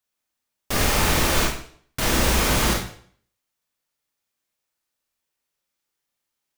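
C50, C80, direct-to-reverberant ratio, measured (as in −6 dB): 4.0 dB, 8.0 dB, −2.0 dB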